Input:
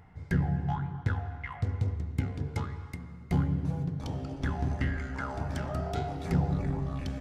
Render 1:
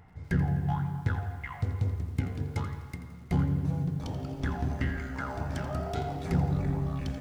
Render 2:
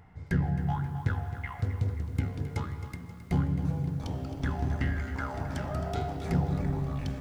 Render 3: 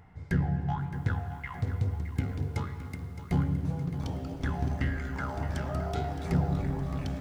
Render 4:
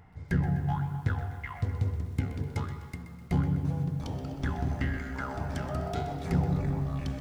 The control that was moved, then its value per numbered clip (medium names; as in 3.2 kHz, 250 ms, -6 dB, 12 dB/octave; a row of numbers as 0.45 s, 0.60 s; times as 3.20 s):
bit-crushed delay, time: 84 ms, 266 ms, 616 ms, 126 ms